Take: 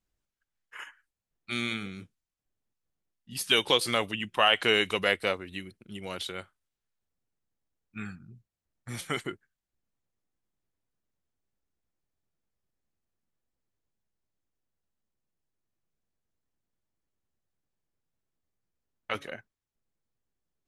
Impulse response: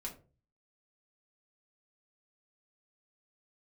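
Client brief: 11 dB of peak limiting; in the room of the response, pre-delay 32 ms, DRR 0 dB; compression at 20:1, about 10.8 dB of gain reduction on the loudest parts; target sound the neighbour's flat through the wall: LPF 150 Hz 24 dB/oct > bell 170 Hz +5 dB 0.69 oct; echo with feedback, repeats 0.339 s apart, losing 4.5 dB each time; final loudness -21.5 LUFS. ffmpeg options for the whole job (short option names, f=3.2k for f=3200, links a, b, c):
-filter_complex "[0:a]acompressor=threshold=-28dB:ratio=20,alimiter=level_in=1dB:limit=-24dB:level=0:latency=1,volume=-1dB,aecho=1:1:339|678|1017|1356|1695|2034|2373|2712|3051:0.596|0.357|0.214|0.129|0.0772|0.0463|0.0278|0.0167|0.01,asplit=2[a][b];[1:a]atrim=start_sample=2205,adelay=32[c];[b][c]afir=irnorm=-1:irlink=0,volume=1.5dB[d];[a][d]amix=inputs=2:normalize=0,lowpass=f=150:w=0.5412,lowpass=f=150:w=1.3066,equalizer=f=170:t=o:w=0.69:g=5,volume=26.5dB"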